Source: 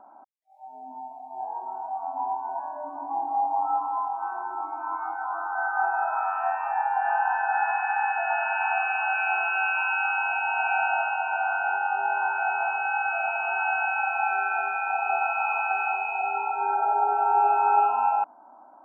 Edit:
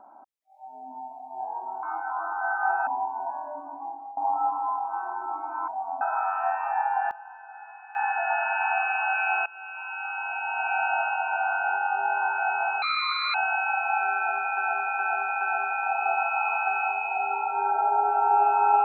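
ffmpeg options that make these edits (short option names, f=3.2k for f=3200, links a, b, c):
-filter_complex "[0:a]asplit=14[a][b][c][d][e][f][g][h][i][j][k][l][m][n];[a]atrim=end=1.832[o];[b]atrim=start=4.968:end=6.012[p];[c]atrim=start=2.158:end=3.46,asetpts=PTS-STARTPTS,afade=t=out:st=0.562:d=0.74:silence=0.0707946[q];[d]atrim=start=3.46:end=4.972,asetpts=PTS-STARTPTS,afade=t=in:d=0.004:c=hsin:silence=0.0707946[r];[e]atrim=start=1.828:end=2.162[s];[f]atrim=start=6.008:end=7.11,asetpts=PTS-STARTPTS,afade=t=out:st=0.772:d=0.33:c=log:silence=0.105925[t];[g]atrim=start=7.11:end=7.95,asetpts=PTS-STARTPTS,volume=-19.5dB[u];[h]atrim=start=7.95:end=9.46,asetpts=PTS-STARTPTS,afade=t=in:d=0.33:c=log:silence=0.105925,afade=t=out:st=1.506:d=0.004:c=hsin:silence=0.0794328[v];[i]atrim=start=9.46:end=12.824,asetpts=PTS-STARTPTS,afade=t=in:d=1.6:silence=0.0794328[w];[j]atrim=start=12.82:end=13.64,asetpts=PTS-STARTPTS,asetrate=69237,aresample=44100,atrim=end_sample=23033,asetpts=PTS-STARTPTS[x];[k]atrim=start=13.636:end=14.872[y];[l]atrim=start=14.448:end=14.872[z];[m]atrim=start=14.448:end=14.872[aa];[n]atrim=start=14.448[ab];[o][p]acrossfade=d=0.004:c1=hsin:c2=hsin[ac];[q][r]concat=n=2:v=0:a=1[ad];[ac][ad]acrossfade=d=0.004:c1=hsin:c2=hsin[ae];[ae][s]acrossfade=d=0.004:c1=hsin:c2=hsin[af];[t][u][v][w]concat=n=4:v=0:a=1[ag];[af][ag]acrossfade=d=0.004:c1=hsin:c2=hsin[ah];[ah][x]acrossfade=d=0.004:c1=hsin:c2=hsin[ai];[ai][y]acrossfade=d=0.004:c1=hsin:c2=hsin[aj];[aj][z]acrossfade=d=0.004:c1=hsin:c2=hsin[ak];[ak][aa]acrossfade=d=0.004:c1=hsin:c2=hsin[al];[al][ab]acrossfade=d=0.004:c1=hsin:c2=hsin"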